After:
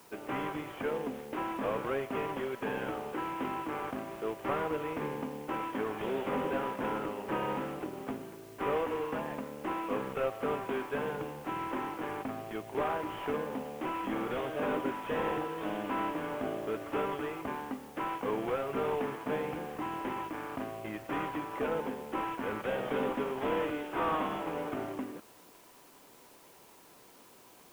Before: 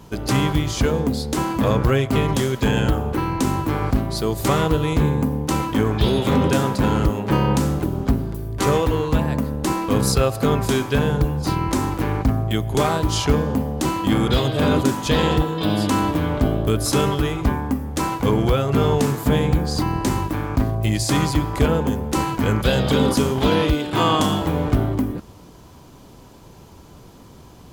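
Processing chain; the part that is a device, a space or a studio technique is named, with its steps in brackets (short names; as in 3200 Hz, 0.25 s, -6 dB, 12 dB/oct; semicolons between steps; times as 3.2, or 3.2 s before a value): army field radio (BPF 370–3100 Hz; CVSD 16 kbps; white noise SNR 25 dB); gain -9 dB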